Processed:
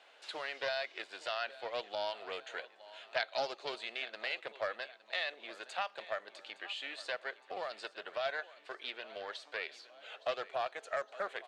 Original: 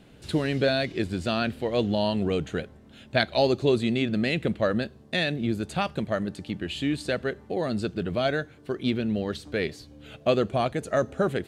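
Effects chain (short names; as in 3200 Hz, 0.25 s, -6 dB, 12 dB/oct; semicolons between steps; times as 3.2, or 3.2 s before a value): HPF 660 Hz 24 dB/oct; compressor 1.5:1, threshold -47 dBFS, peak gain reduction 10 dB; air absorption 89 m; on a send: feedback echo 0.864 s, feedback 52%, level -18 dB; on the sum: Doppler distortion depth 0.14 ms; gain +1 dB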